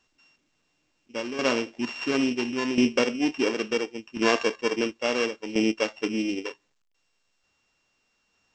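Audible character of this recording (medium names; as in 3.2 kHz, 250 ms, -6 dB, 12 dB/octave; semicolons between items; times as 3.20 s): a buzz of ramps at a fixed pitch in blocks of 16 samples; tremolo saw down 0.72 Hz, depth 70%; A-law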